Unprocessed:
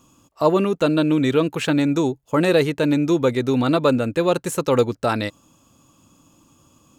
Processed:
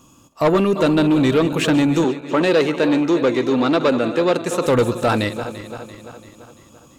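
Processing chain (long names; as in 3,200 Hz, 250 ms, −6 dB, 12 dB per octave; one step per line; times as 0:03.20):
feedback delay that plays each chunk backwards 170 ms, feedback 72%, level −13 dB
soft clipping −15 dBFS, distortion −14 dB
0:02.04–0:04.66: three-way crossover with the lows and the highs turned down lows −14 dB, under 190 Hz, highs −12 dB, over 7,000 Hz
level +5 dB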